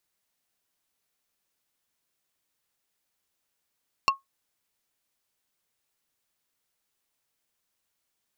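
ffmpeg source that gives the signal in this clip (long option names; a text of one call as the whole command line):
ffmpeg -f lavfi -i "aevalsrc='0.2*pow(10,-3*t/0.15)*sin(2*PI*1090*t)+0.141*pow(10,-3*t/0.05)*sin(2*PI*2725*t)+0.1*pow(10,-3*t/0.028)*sin(2*PI*4360*t)+0.0708*pow(10,-3*t/0.022)*sin(2*PI*5450*t)+0.0501*pow(10,-3*t/0.016)*sin(2*PI*7085*t)':duration=0.45:sample_rate=44100" out.wav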